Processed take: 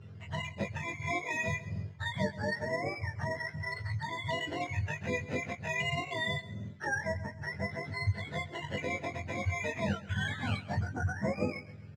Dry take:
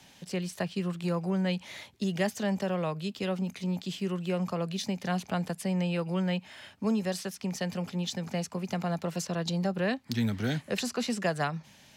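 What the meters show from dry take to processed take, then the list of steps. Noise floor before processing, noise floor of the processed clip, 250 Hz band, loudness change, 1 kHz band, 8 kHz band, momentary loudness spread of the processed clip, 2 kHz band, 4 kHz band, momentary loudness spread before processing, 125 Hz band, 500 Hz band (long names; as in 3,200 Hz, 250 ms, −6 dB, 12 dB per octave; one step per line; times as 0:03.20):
−57 dBFS, −49 dBFS, −9.5 dB, −3.5 dB, −1.0 dB, −8.0 dB, 5 LU, +5.0 dB, −3.5 dB, 5 LU, −2.5 dB, −4.5 dB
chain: frequency axis turned over on the octave scale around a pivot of 600 Hz
in parallel at +2 dB: downward compressor, threshold −39 dBFS, peak gain reduction 15 dB
on the sum: sample-and-hold swept by an LFO 8×, swing 60% 0.24 Hz
high-frequency loss of the air 140 metres
double-tracking delay 20 ms −4 dB
repeating echo 133 ms, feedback 36%, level −17 dB
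level −5.5 dB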